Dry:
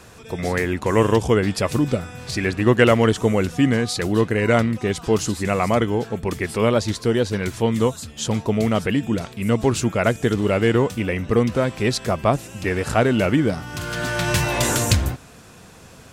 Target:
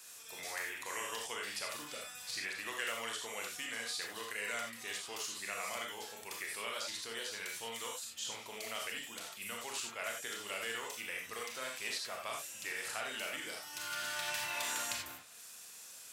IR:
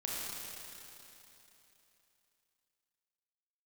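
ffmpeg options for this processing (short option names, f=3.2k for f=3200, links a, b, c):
-filter_complex "[0:a]aderivative,acrossover=split=490|1600|3600[a][b][c][d];[a]acompressor=threshold=-58dB:ratio=4[e];[b]acompressor=threshold=-42dB:ratio=4[f];[c]acompressor=threshold=-42dB:ratio=4[g];[d]acompressor=threshold=-47dB:ratio=4[h];[e][f][g][h]amix=inputs=4:normalize=0[i];[1:a]atrim=start_sample=2205,afade=t=out:st=0.15:d=0.01,atrim=end_sample=7056[j];[i][j]afir=irnorm=-1:irlink=0,volume=1.5dB"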